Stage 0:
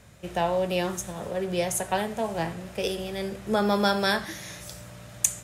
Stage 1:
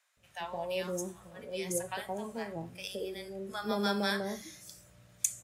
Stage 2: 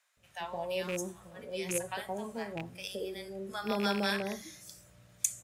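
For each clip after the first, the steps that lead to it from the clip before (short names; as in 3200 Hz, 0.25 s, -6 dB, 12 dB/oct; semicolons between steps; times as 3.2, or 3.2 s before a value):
spectral noise reduction 9 dB; bands offset in time highs, lows 0.17 s, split 800 Hz; gain -7 dB
rattling part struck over -38 dBFS, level -28 dBFS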